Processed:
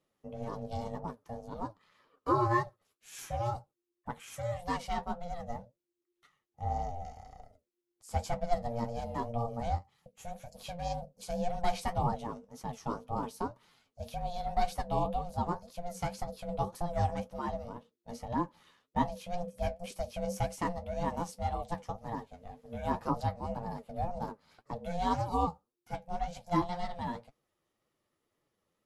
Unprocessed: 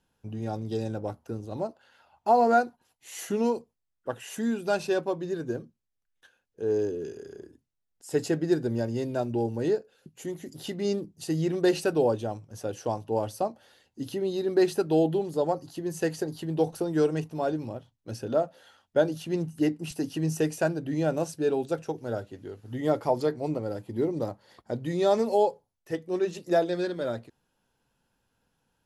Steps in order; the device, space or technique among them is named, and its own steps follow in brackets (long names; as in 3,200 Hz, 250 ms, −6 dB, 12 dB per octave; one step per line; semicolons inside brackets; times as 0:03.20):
alien voice (ring modulation 350 Hz; flanger 1.9 Hz, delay 5.6 ms, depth 7.1 ms, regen +43%)